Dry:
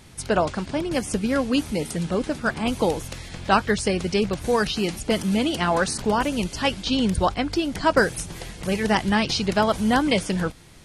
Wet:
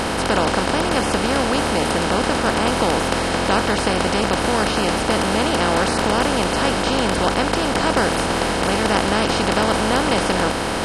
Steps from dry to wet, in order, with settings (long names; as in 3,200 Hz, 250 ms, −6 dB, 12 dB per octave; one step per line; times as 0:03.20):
compressor on every frequency bin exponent 0.2
level −6.5 dB